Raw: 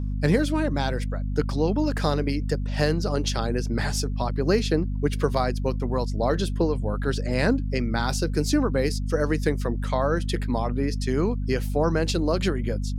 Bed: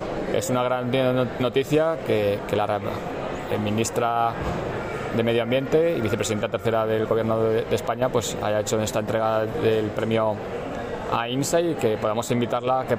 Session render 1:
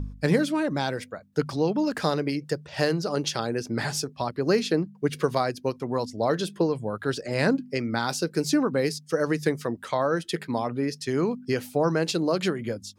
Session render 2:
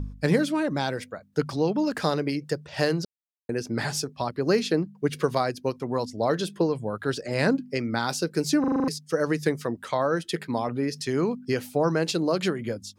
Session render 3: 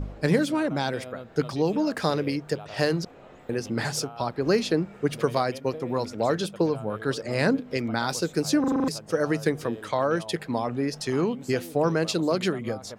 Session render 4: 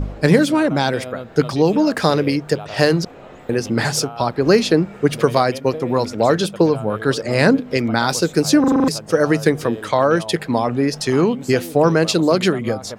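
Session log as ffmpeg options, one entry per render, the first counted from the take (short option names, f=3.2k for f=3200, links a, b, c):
-af "bandreject=f=50:t=h:w=4,bandreject=f=100:t=h:w=4,bandreject=f=150:t=h:w=4,bandreject=f=200:t=h:w=4,bandreject=f=250:t=h:w=4"
-filter_complex "[0:a]asettb=1/sr,asplit=3[a][b][c];[a]atrim=end=10.684[d];[b]atrim=start=10.68:end=11.23,asetpts=PTS-STARTPTS,afade=t=in:d=0.004:c=qsin,afade=t=out:st=0.546:d=0.004:c=qsin,acompressor=mode=upward:threshold=-27dB:ratio=2.5:attack=3.2:release=140:knee=2.83:detection=peak[e];[c]atrim=start=11.226[f];[d][e]acrossfade=d=0.004:c1=hsin:c2=qsin[g];[g][f]acrossfade=d=0.004:c1=qsin:c2=hsin,asplit=10[h][i][j][k][l][m][n][o][p][q];[h]atrim=end=3.05,asetpts=PTS-STARTPTS,afade=t=out:st=3.046:d=0.004:c=hsin[r];[i]atrim=start=3.05:end=3.49,asetpts=PTS-STARTPTS,volume=0[s];[j]atrim=start=3.49:end=8.642,asetpts=PTS-STARTPTS,afade=t=in:d=0.004:c=hsin[t];[k]atrim=start=8.598:end=8.642[u];[l]atrim=start=8.598:end=8.642[v];[m]atrim=start=8.598:end=8.642[w];[n]atrim=start=8.598:end=8.642[x];[o]atrim=start=8.598:end=8.642[y];[p]atrim=start=8.598:end=8.642[z];[q]atrim=start=8.878[aa];[r][s][t]concat=n=3:v=0:a=1[ab];[ab][u]acrossfade=d=0.004:c1=hsin:c2=hsin[ac];[ac][v]acrossfade=d=0.004:c1=hsin:c2=hsin[ad];[ad][w]acrossfade=d=0.004:c1=hsin:c2=hsin[ae];[ae][x]acrossfade=d=0.004:c1=hsin:c2=hsin[af];[af][y]acrossfade=d=0.004:c1=hsin:c2=hsin[ag];[ag][z]acrossfade=d=0.004:c1=hsin:c2=hsin[ah];[ah][aa]acrossfade=d=0.004:c1=hsin:c2=hsin"
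-filter_complex "[1:a]volume=-19.5dB[a];[0:a][a]amix=inputs=2:normalize=0"
-af "volume=9dB,alimiter=limit=-1dB:level=0:latency=1"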